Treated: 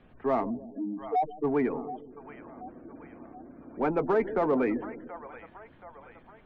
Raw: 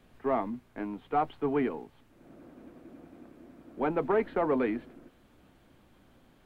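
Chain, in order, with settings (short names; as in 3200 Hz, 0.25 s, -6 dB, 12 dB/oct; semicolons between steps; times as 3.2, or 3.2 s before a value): 0.68–1.44 spectral contrast raised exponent 3.3; split-band echo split 600 Hz, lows 0.152 s, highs 0.728 s, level -14 dB; spectral gate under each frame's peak -30 dB strong; in parallel at -6.5 dB: soft clip -30.5 dBFS, distortion -8 dB; on the sum: low-pass opened by the level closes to 2800 Hz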